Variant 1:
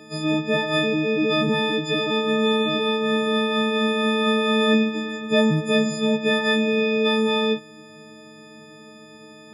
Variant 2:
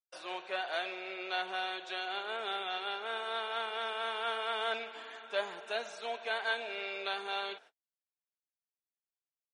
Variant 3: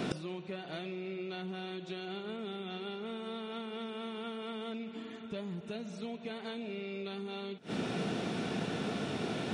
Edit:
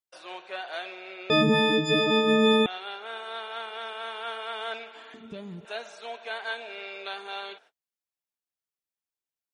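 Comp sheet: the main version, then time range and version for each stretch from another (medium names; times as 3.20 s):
2
1.30–2.66 s: from 1
5.14–5.65 s: from 3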